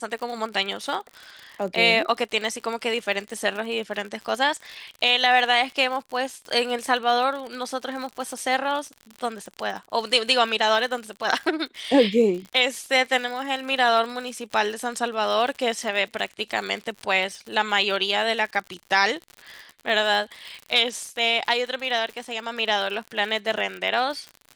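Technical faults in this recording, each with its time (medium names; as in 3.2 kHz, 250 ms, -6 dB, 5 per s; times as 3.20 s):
crackle 69 per s -31 dBFS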